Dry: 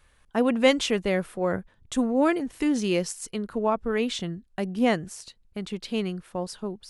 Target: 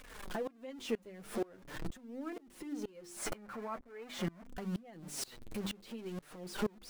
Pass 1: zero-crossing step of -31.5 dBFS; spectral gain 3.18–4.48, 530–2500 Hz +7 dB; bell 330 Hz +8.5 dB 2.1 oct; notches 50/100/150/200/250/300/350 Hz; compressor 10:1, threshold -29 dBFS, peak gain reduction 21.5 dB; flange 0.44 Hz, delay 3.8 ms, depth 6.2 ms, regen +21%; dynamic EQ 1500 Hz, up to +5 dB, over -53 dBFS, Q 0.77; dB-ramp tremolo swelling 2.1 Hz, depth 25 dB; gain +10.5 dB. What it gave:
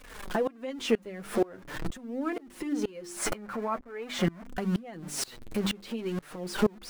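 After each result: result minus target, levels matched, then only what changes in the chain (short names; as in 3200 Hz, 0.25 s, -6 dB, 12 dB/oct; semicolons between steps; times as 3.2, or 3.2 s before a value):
compressor: peak gain reduction -11 dB; zero-crossing step: distortion -5 dB
change: compressor 10:1, threshold -40.5 dBFS, peak gain reduction 32 dB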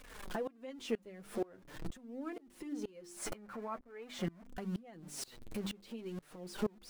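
zero-crossing step: distortion -5 dB
change: zero-crossing step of -25 dBFS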